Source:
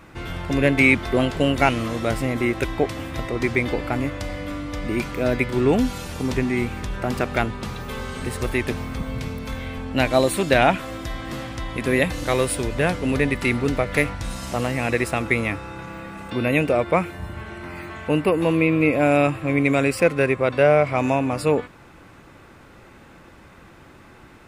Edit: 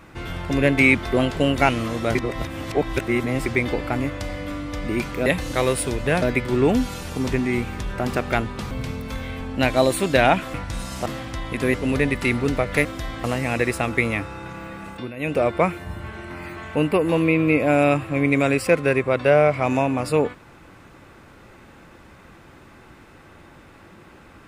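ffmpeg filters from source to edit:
-filter_complex "[0:a]asplit=13[a][b][c][d][e][f][g][h][i][j][k][l][m];[a]atrim=end=2.152[n];[b]atrim=start=2.148:end=3.462,asetpts=PTS-STARTPTS,areverse[o];[c]atrim=start=3.458:end=5.262[p];[d]atrim=start=11.978:end=12.942[q];[e]atrim=start=5.258:end=7.752[r];[f]atrim=start=9.078:end=10.912[s];[g]atrim=start=14.048:end=14.572[t];[h]atrim=start=11.298:end=11.982[u];[i]atrim=start=12.938:end=14.052[v];[j]atrim=start=10.908:end=11.302[w];[k]atrim=start=14.568:end=16.46,asetpts=PTS-STARTPTS,afade=t=out:st=1.652:d=0.24:silence=0.16788[x];[l]atrim=start=16.46:end=16.49,asetpts=PTS-STARTPTS,volume=-15.5dB[y];[m]atrim=start=16.49,asetpts=PTS-STARTPTS,afade=t=in:d=0.24:silence=0.16788[z];[n][o]acrossfade=d=0.004:c1=hsin:c2=hsin[aa];[aa][p]acrossfade=d=0.004:c1=hsin:c2=hsin[ab];[ab][q]acrossfade=d=0.004:c1=hsin:c2=hsin[ac];[ac][r]acrossfade=d=0.004:c1=hsin:c2=hsin[ad];[ad][s]acrossfade=d=0.004:c1=hsin:c2=hsin[ae];[ae][t]acrossfade=d=0.004:c1=hsin:c2=hsin[af];[af][u]acrossfade=d=0.004:c1=hsin:c2=hsin[ag];[ag][v]acrossfade=d=0.004:c1=hsin:c2=hsin[ah];[ah][w]acrossfade=d=0.004:c1=hsin:c2=hsin[ai];[x][y][z]concat=n=3:v=0:a=1[aj];[ai][aj]acrossfade=d=0.004:c1=hsin:c2=hsin"

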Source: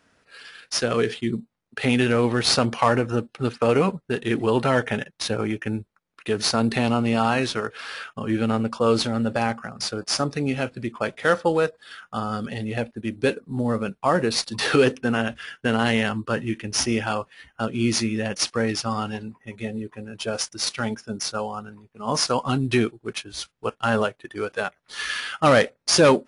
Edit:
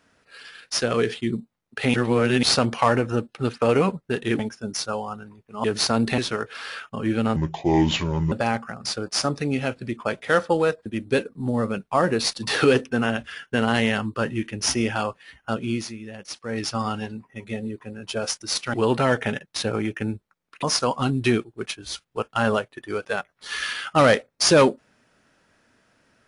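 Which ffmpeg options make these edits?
-filter_complex "[0:a]asplit=13[a][b][c][d][e][f][g][h][i][j][k][l][m];[a]atrim=end=1.942[n];[b]atrim=start=1.938:end=2.432,asetpts=PTS-STARTPTS,areverse[o];[c]atrim=start=2.428:end=4.392[p];[d]atrim=start=20.848:end=22.102[q];[e]atrim=start=6.278:end=6.822[r];[f]atrim=start=7.418:end=8.604[s];[g]atrim=start=8.6:end=9.27,asetpts=PTS-STARTPTS,asetrate=30870,aresample=44100[t];[h]atrim=start=9.266:end=11.812[u];[i]atrim=start=12.968:end=17.97,asetpts=PTS-STARTPTS,afade=t=out:st=4.642:d=0.36:c=qsin:silence=0.251189[v];[j]atrim=start=17.97:end=18.55,asetpts=PTS-STARTPTS,volume=-12dB[w];[k]atrim=start=18.55:end=20.852,asetpts=PTS-STARTPTS,afade=t=in:d=0.36:c=qsin:silence=0.251189[x];[l]atrim=start=4.388:end=6.282[y];[m]atrim=start=22.098[z];[n][o]acrossfade=d=0.004:c1=hsin:c2=hsin[aa];[aa][p]acrossfade=d=0.004:c1=hsin:c2=hsin[ab];[ab][q]acrossfade=d=0.004:c1=hsin:c2=hsin[ac];[ac][r]acrossfade=d=0.004:c1=hsin:c2=hsin[ad];[ad][s]acrossfade=d=0.004:c1=hsin:c2=hsin[ae];[ae][t]acrossfade=d=0.004:c1=hsin:c2=hsin[af];[af][u]acrossfade=d=0.004:c1=hsin:c2=hsin[ag];[v][w][x]concat=n=3:v=0:a=1[ah];[ag][ah]acrossfade=d=0.004:c1=hsin:c2=hsin[ai];[ai][y]acrossfade=d=0.004:c1=hsin:c2=hsin[aj];[aj][z]acrossfade=d=0.004:c1=hsin:c2=hsin"

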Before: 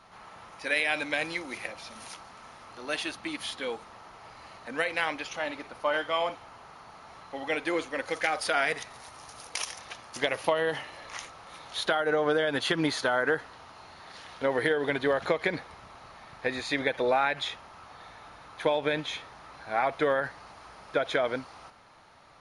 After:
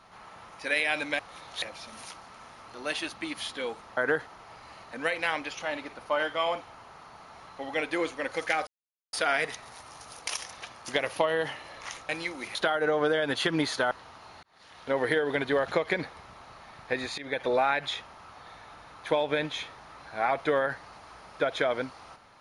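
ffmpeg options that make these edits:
-filter_complex "[0:a]asplit=11[a][b][c][d][e][f][g][h][i][j][k];[a]atrim=end=1.192[l];[b]atrim=start=11.368:end=11.802[m];[c]atrim=start=1.648:end=4.002[n];[d]atrim=start=13.158:end=13.452[o];[e]atrim=start=3.998:end=8.41,asetpts=PTS-STARTPTS,afade=t=out:st=4.408:d=0.004:c=hsin,apad=pad_dur=0.46[p];[f]atrim=start=8.41:end=11.372,asetpts=PTS-STARTPTS,afade=t=in:d=0.004:c=hsin[q];[g]atrim=start=1.188:end=1.652[r];[h]atrim=start=11.798:end=13.162[s];[i]atrim=start=13.448:end=13.97,asetpts=PTS-STARTPTS,afade=t=out:st=0.518:d=0.004:c=hsin[t];[j]atrim=start=13.97:end=16.72,asetpts=PTS-STARTPTS,afade=t=in:d=0.54,afade=t=out:st=2.746:d=0.004:c=hsin:silence=0.112202[u];[k]atrim=start=16.72,asetpts=PTS-STARTPTS,afade=t=in:d=0.25:silence=0.112202[v];[l][m]acrossfade=d=0.004:c1=hsin:c2=hsin[w];[w][n]acrossfade=d=0.004:c1=hsin:c2=hsin[x];[x][o]acrossfade=d=0.004:c1=hsin:c2=hsin[y];[p][q]concat=n=2:v=0:a=1[z];[y][z]acrossfade=d=0.004:c1=hsin:c2=hsin[aa];[aa][r]acrossfade=d=0.004:c1=hsin:c2=hsin[ab];[ab][s]acrossfade=d=0.004:c1=hsin:c2=hsin[ac];[t][u][v]concat=n=3:v=0:a=1[ad];[ac][ad]acrossfade=d=0.004:c1=hsin:c2=hsin"

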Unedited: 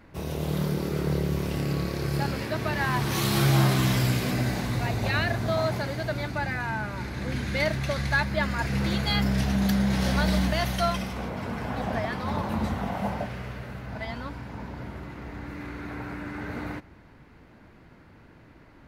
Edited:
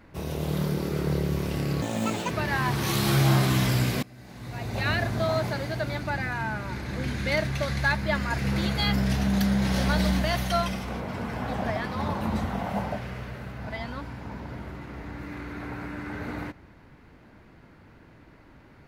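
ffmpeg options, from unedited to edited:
-filter_complex "[0:a]asplit=4[a][b][c][d];[a]atrim=end=1.824[e];[b]atrim=start=1.82:end=2.59,asetpts=PTS-STARTPTS,asetrate=69678,aresample=44100[f];[c]atrim=start=2.586:end=4.31,asetpts=PTS-STARTPTS,afade=t=out:st=1.72:d=0.004:c=hsin:silence=0.0630957[g];[d]atrim=start=4.31,asetpts=PTS-STARTPTS,afade=t=in:d=0.88:c=qua:silence=0.0630957[h];[e][f]acrossfade=d=0.004:c1=hsin:c2=hsin[i];[g][h]concat=n=2:v=0:a=1[j];[i][j]acrossfade=d=0.004:c1=hsin:c2=hsin"

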